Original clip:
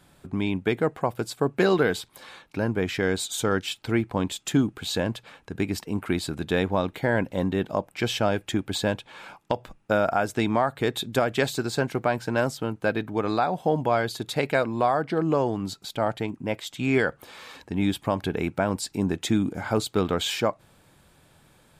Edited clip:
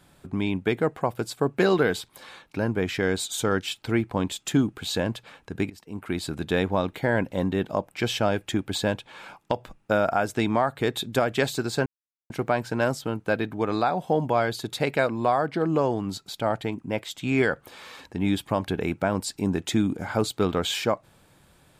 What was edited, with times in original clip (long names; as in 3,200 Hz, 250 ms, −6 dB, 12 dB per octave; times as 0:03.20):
0:05.70–0:06.34: fade in, from −23 dB
0:11.86: splice in silence 0.44 s